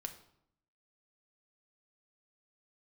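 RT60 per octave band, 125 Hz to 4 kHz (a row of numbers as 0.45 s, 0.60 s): 0.95 s, 0.90 s, 0.70 s, 0.70 s, 0.55 s, 0.55 s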